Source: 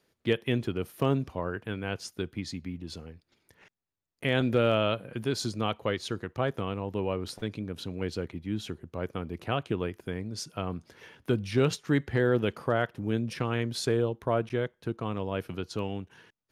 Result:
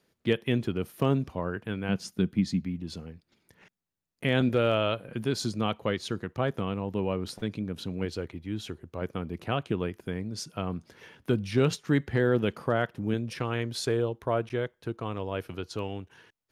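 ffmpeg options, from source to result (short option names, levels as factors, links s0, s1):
-af "asetnsamples=n=441:p=0,asendcmd='1.89 equalizer g 14.5;2.64 equalizer g 6.5;4.49 equalizer g -3.5;5.09 equalizer g 4.5;8.05 equalizer g -3.5;9.02 equalizer g 3;13.14 equalizer g -4.5',equalizer=f=190:t=o:w=0.76:g=4"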